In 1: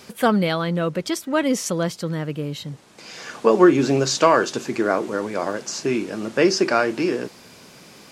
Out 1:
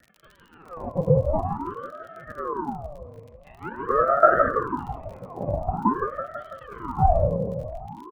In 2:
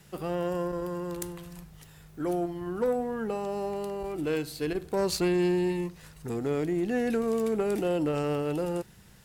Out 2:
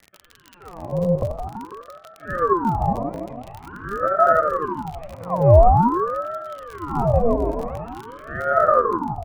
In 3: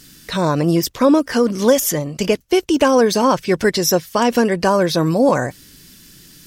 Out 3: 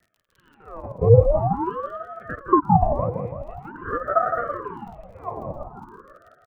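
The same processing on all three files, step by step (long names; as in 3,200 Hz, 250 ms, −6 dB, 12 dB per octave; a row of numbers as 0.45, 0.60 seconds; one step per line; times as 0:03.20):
delay that plays each chunk backwards 115 ms, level −6 dB
parametric band 1,500 Hz −8.5 dB 0.82 octaves
comb filter 4.9 ms, depth 30%
sample-and-hold swept by an LFO 36×, swing 60% 1.5 Hz
formant resonators in series u
surface crackle 48 per second −46 dBFS
auto-filter high-pass sine 0.66 Hz 300–2,600 Hz
on a send: feedback echo with a low-pass in the loop 165 ms, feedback 65%, low-pass 1,600 Hz, level −7 dB
on the sum: ring modulator whose carrier an LFO sweeps 580 Hz, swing 70%, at 0.47 Hz
normalise the peak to −1.5 dBFS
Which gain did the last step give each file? +7.5, +18.5, +1.5 decibels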